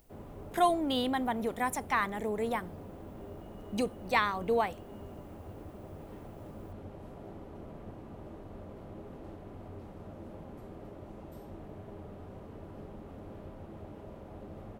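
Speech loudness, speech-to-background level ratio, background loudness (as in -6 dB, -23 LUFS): -31.5 LUFS, 16.0 dB, -47.5 LUFS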